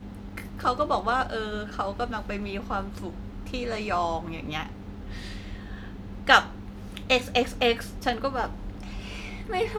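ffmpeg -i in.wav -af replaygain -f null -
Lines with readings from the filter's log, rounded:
track_gain = +7.6 dB
track_peak = 0.527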